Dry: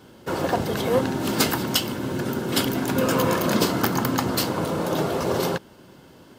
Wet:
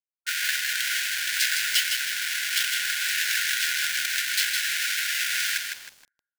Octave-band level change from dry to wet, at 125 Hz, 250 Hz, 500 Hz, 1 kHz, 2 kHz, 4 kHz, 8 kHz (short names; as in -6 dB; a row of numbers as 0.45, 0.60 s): under -40 dB, under -40 dB, under -35 dB, -12.5 dB, +7.5 dB, +4.5 dB, +5.5 dB